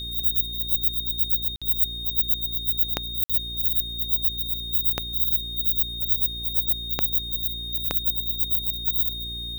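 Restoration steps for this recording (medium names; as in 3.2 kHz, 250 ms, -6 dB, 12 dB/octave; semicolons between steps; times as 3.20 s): de-click; de-hum 58.6 Hz, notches 7; band-stop 3.7 kHz, Q 30; interpolate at 1.56/3.24 s, 56 ms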